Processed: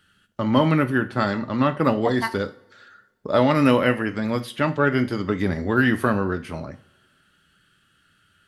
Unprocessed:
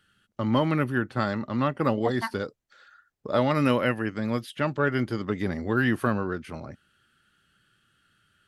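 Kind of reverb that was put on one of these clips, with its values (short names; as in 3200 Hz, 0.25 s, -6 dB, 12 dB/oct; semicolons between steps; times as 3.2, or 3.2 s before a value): two-slope reverb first 0.36 s, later 1.8 s, from -25 dB, DRR 8.5 dB; gain +4.5 dB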